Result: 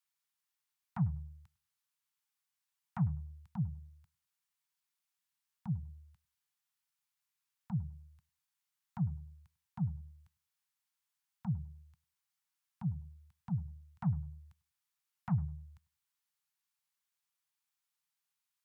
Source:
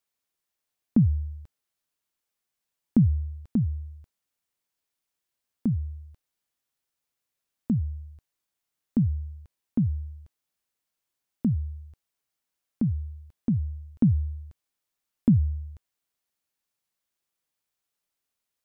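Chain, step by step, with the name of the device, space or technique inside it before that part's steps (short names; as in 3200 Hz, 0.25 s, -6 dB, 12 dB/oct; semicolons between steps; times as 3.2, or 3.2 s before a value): rockabilly slapback (tube stage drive 21 dB, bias 0.65; tape echo 99 ms, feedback 29%, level -18 dB, low-pass 1000 Hz); HPF 140 Hz 12 dB/oct; inverse Chebyshev band-stop 250–570 Hz, stop band 40 dB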